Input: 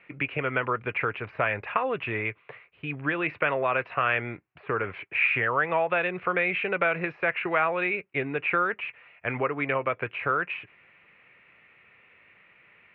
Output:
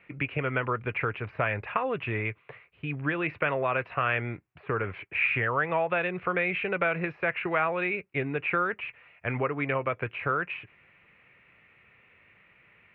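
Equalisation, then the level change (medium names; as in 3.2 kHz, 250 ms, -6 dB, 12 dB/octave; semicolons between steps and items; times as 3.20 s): bass shelf 160 Hz +10 dB; -2.5 dB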